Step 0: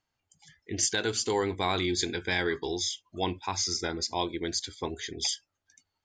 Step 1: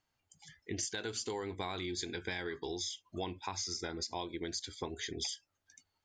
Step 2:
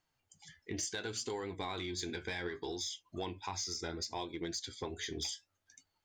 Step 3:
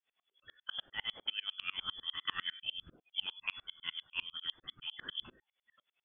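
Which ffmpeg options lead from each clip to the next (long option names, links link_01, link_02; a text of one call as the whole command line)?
ffmpeg -i in.wav -af "acompressor=threshold=-36dB:ratio=6" out.wav
ffmpeg -i in.wav -af "asoftclip=type=tanh:threshold=-27.5dB,flanger=delay=5.5:depth=8.2:regen=63:speed=0.67:shape=triangular,volume=4.5dB" out.wav
ffmpeg -i in.wav -af "lowpass=frequency=3000:width_type=q:width=0.5098,lowpass=frequency=3000:width_type=q:width=0.6013,lowpass=frequency=3000:width_type=q:width=0.9,lowpass=frequency=3000:width_type=q:width=2.563,afreqshift=-3500,aeval=exprs='val(0)*pow(10,-32*if(lt(mod(-10*n/s,1),2*abs(-10)/1000),1-mod(-10*n/s,1)/(2*abs(-10)/1000),(mod(-10*n/s,1)-2*abs(-10)/1000)/(1-2*abs(-10)/1000))/20)':channel_layout=same,volume=8.5dB" out.wav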